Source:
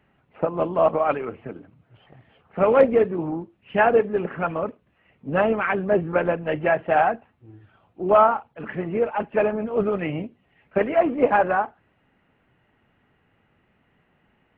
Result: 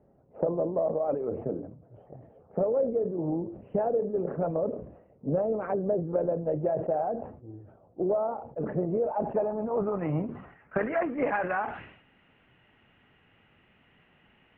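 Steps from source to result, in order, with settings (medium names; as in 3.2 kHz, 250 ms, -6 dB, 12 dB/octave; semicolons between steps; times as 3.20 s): low-pass sweep 560 Hz -> 3.1 kHz, 8.81–12.14 s; compression 6:1, threshold -26 dBFS, peak gain reduction 21.5 dB; dynamic bell 150 Hz, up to +5 dB, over -51 dBFS, Q 6.2; decay stretcher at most 81 dB/s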